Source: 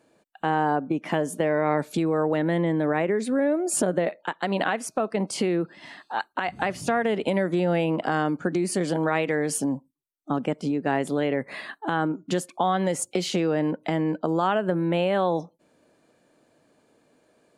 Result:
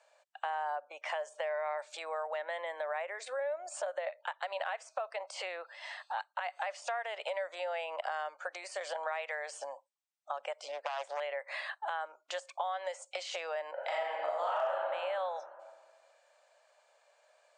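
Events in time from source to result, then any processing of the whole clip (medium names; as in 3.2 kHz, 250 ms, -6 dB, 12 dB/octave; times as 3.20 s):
10.68–11.20 s: self-modulated delay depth 0.49 ms
13.73–14.89 s: reverb throw, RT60 1.5 s, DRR -8.5 dB
whole clip: de-esser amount 90%; Chebyshev band-pass 560–8500 Hz, order 5; compression 3:1, threshold -36 dBFS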